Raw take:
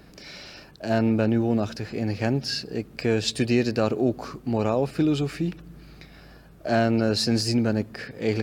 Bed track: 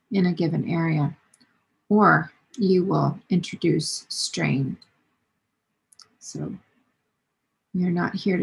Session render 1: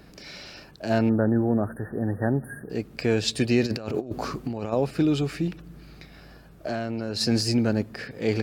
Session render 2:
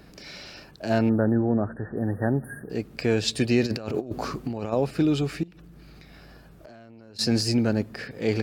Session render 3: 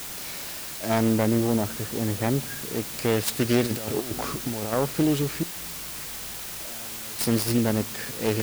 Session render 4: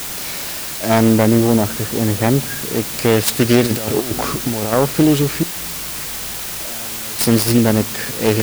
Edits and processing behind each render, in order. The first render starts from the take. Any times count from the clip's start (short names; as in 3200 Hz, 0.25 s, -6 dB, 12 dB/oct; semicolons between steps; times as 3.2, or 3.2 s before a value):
1.09–2.7 brick-wall FIR band-stop 1900–8600 Hz; 3.63–4.73 negative-ratio compressor -28 dBFS, ratio -0.5; 5.47–7.21 compressor, threshold -25 dBFS
1.35–1.97 air absorption 120 m; 5.43–7.19 compressor 12:1, threshold -43 dBFS
self-modulated delay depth 0.35 ms; requantised 6-bit, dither triangular
gain +9.5 dB; limiter -1 dBFS, peak gain reduction 1 dB